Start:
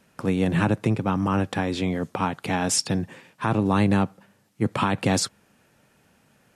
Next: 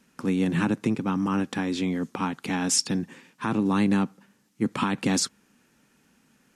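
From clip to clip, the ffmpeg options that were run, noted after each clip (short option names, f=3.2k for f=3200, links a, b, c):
-af "equalizer=f=100:t=o:w=0.67:g=-11,equalizer=f=250:t=o:w=0.67:g=6,equalizer=f=630:t=o:w=0.67:g=-8,equalizer=f=6.3k:t=o:w=0.67:g=4,volume=-2.5dB"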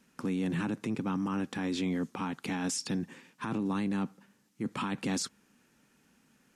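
-af "alimiter=limit=-21.5dB:level=0:latency=1:release=20,volume=-3.5dB"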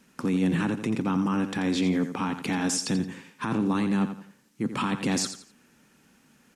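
-af "aecho=1:1:86|172|258:0.316|0.0949|0.0285,volume=6dB"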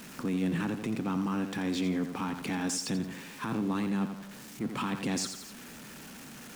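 -af "aeval=exprs='val(0)+0.5*0.0178*sgn(val(0))':c=same,volume=-6.5dB"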